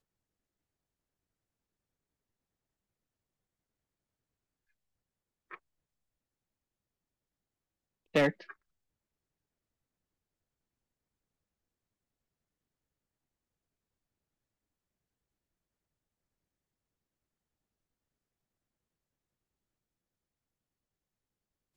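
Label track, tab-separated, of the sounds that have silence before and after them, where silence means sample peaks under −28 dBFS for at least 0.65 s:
8.150000	8.290000	sound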